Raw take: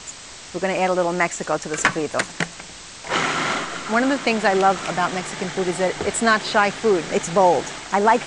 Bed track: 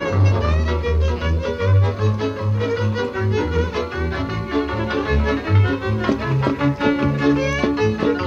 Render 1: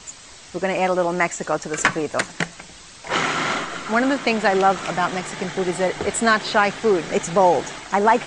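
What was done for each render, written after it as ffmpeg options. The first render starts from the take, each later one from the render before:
-af "afftdn=nr=6:nf=-39"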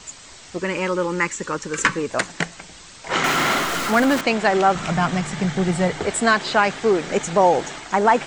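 -filter_complex "[0:a]asettb=1/sr,asplit=3[a][b][c];[a]atrim=end=0.594[d];[b]atrim=start=0.59:end=2.1,asetpts=PTS-STARTPTS,afade=t=in:d=0.004:c=qsin,afade=t=out:st=1.506:d=0.004:c=qsin,asuperstop=centerf=690:order=4:qfactor=2.1[e];[c]atrim=start=2.096[f];[d][e]acrossfade=d=0.004:c1=hsin:c2=qsin[g];[g][f]acrossfade=d=0.004:c1=qsin:c2=hsin,asettb=1/sr,asplit=3[h][i][j];[h]atrim=end=3.244[k];[i]atrim=start=3.24:end=4.21,asetpts=PTS-STARTPTS,afade=t=in:d=0.004:c=qsin,afade=t=out:st=0.966:d=0.004:c=qsin,aeval=exprs='val(0)+0.5*0.0794*sgn(val(0))':c=same[l];[j]atrim=start=4.206[m];[k][l]acrossfade=d=0.004:c1=hsin:c2=qsin[n];[n][m]acrossfade=d=0.004:c1=qsin:c2=hsin,asettb=1/sr,asplit=3[o][p][q];[o]atrim=end=4.754[r];[p]atrim=start=4.75:end=5.96,asetpts=PTS-STARTPTS,afade=t=in:d=0.004:c=qsin,afade=t=out:st=1.206:d=0.004:c=qsin,lowshelf=f=240:t=q:w=1.5:g=8[s];[q]atrim=start=5.956[t];[r][s]acrossfade=d=0.004:c1=hsin:c2=qsin[u];[u][t]acrossfade=d=0.004:c1=qsin:c2=hsin"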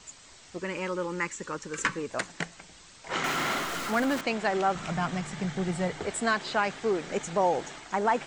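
-af "volume=-9.5dB"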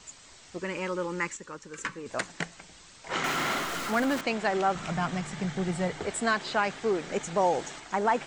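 -filter_complex "[0:a]asettb=1/sr,asplit=3[a][b][c];[a]atrim=end=7.374[d];[b]atrim=start=7.37:end=7.8,asetpts=PTS-STARTPTS,afade=t=in:d=0.004:c=qsin,afade=t=out:st=0.426:d=0.004:c=qsin,highshelf=f=5.5k:g=5.5[e];[c]atrim=start=7.796[f];[d][e]acrossfade=d=0.004:c1=hsin:c2=qsin[g];[g][f]acrossfade=d=0.004:c1=qsin:c2=hsin,asplit=3[h][i][j];[h]atrim=end=1.372[k];[i]atrim=start=1.368:end=2.062,asetpts=PTS-STARTPTS,volume=-6.5dB[l];[j]atrim=start=2.058[m];[k][l]acrossfade=d=0.004:c1=hsin:c2=hsin[n];[n][m]acrossfade=d=0.004:c1=hsin:c2=hsin"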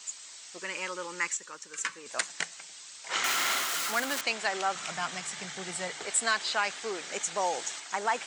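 -af "highpass=f=1.1k:p=1,highshelf=f=3.7k:g=10"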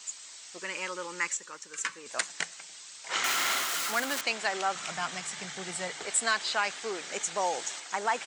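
-filter_complex "[0:a]asplit=2[a][b];[b]adelay=326.5,volume=-30dB,highshelf=f=4k:g=-7.35[c];[a][c]amix=inputs=2:normalize=0"

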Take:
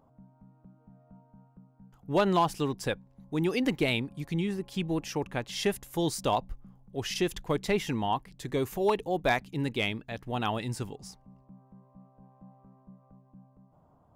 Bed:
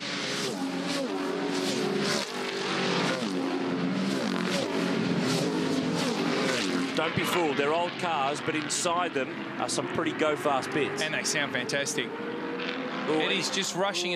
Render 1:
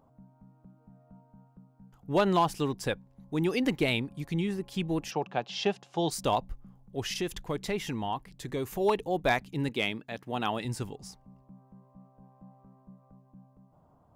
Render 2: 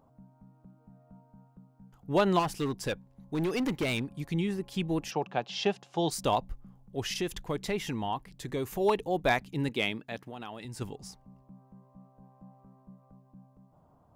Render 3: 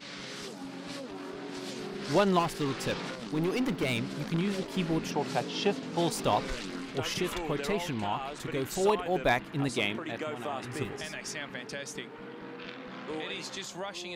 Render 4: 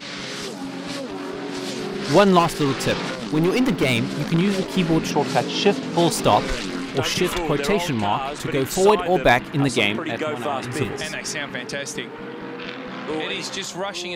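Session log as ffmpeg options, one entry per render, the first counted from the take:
-filter_complex "[0:a]asplit=3[a][b][c];[a]afade=t=out:st=5.1:d=0.02[d];[b]highpass=f=140:w=0.5412,highpass=f=140:w=1.3066,equalizer=f=270:t=q:w=4:g=-7,equalizer=f=740:t=q:w=4:g=9,equalizer=f=2k:t=q:w=4:g=-8,equalizer=f=2.8k:t=q:w=4:g=3,lowpass=f=5.5k:w=0.5412,lowpass=f=5.5k:w=1.3066,afade=t=in:st=5.1:d=0.02,afade=t=out:st=6.1:d=0.02[e];[c]afade=t=in:st=6.1:d=0.02[f];[d][e][f]amix=inputs=3:normalize=0,asettb=1/sr,asplit=3[g][h][i];[g]atrim=end=7.134[j];[h]atrim=start=7.13:end=8.76,asetpts=PTS-STARTPTS,afade=t=in:d=0.004:c=qsin,afade=t=out:st=1.626:d=0.004:c=qsin,acompressor=threshold=-34dB:ratio=1.5:attack=3.2:release=140:knee=1:detection=peak[k];[i]atrim=start=8.756[l];[j][k]acrossfade=d=0.004:c1=hsin:c2=qsin[m];[m][l]acrossfade=d=0.004:c1=qsin:c2=hsin,asettb=1/sr,asplit=3[n][o][p];[n]atrim=end=9.694[q];[o]atrim=start=9.69:end=10.65,asetpts=PTS-STARTPTS,afade=t=in:d=0.004:c=qsin,afade=t=out:st=0.956:d=0.004:c=qsin,highpass=150[r];[p]atrim=start=10.646[s];[q][r]acrossfade=d=0.004:c1=hsin:c2=qsin[t];[t][s]acrossfade=d=0.004:c1=qsin:c2=hsin"
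-filter_complex "[0:a]asettb=1/sr,asplit=3[a][b][c];[a]atrim=end=2.394[d];[b]atrim=start=2.39:end=4.15,asetpts=PTS-STARTPTS,afade=t=in:d=0.004:c=qsin,afade=t=out:st=1.756:d=0.004:c=qsin,volume=25.5dB,asoftclip=hard,volume=-25.5dB[e];[c]atrim=start=4.146[f];[d][e]acrossfade=d=0.004:c1=hsin:c2=qsin[g];[g][f]acrossfade=d=0.004:c1=qsin:c2=hsin,asplit=3[h][i][j];[h]afade=t=out:st=10.23:d=0.02[k];[i]acompressor=threshold=-39dB:ratio=4:attack=3.2:release=140:knee=1:detection=peak,afade=t=in:st=10.23:d=0.02,afade=t=out:st=10.8:d=0.02[l];[j]afade=t=in:st=10.8:d=0.02[m];[k][l][m]amix=inputs=3:normalize=0"
-filter_complex "[1:a]volume=-10.5dB[a];[0:a][a]amix=inputs=2:normalize=0"
-af "volume=10.5dB"

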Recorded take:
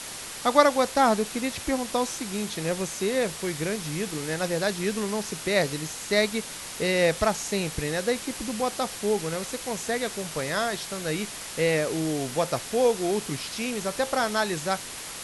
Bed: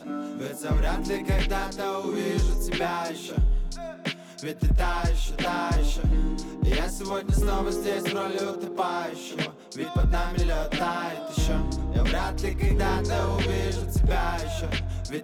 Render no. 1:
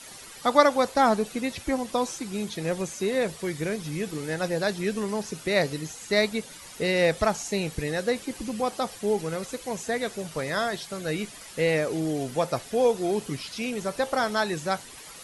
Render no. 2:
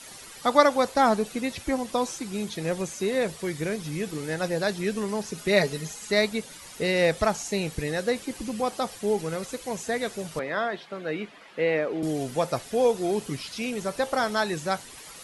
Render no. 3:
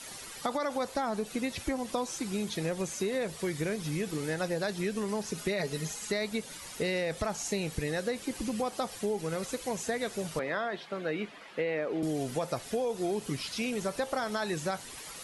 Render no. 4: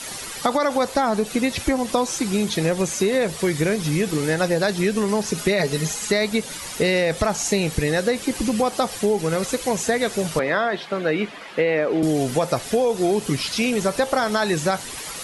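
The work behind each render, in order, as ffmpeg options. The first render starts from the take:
-af "afftdn=nr=11:nf=-38"
-filter_complex "[0:a]asettb=1/sr,asplit=3[a][b][c];[a]atrim=end=5.374[d];[b]atrim=start=5.37:end=6.11,asetpts=PTS-STARTPTS,afade=t=in:d=0.004:c=qsin,afade=t=out:st=0.736:d=0.004:c=qsin,aecho=1:1:4.8:0.65,atrim=end_sample=32634[e];[c]atrim=start=6.106[f];[d][e]acrossfade=d=0.004:c1=hsin:c2=qsin[g];[g][f]acrossfade=d=0.004:c1=qsin:c2=hsin,asettb=1/sr,asplit=3[h][i][j];[h]atrim=end=10.394[k];[i]atrim=start=10.39:end=12.03,asetpts=PTS-STARTPTS,afade=t=in:d=0.004:c=qsin,afade=t=out:st=1.636:d=0.004:c=qsin,acrossover=split=180 3400:gain=0.0891 1 0.0631[l][m][n];[l][m][n]amix=inputs=3:normalize=0[o];[j]atrim=start=12.026[p];[k][o]acrossfade=d=0.004:c1=hsin:c2=qsin[q];[q][p]acrossfade=d=0.004:c1=qsin:c2=hsin"
-af "alimiter=limit=-16dB:level=0:latency=1:release=22,acompressor=threshold=-28dB:ratio=6"
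-af "volume=11.5dB"

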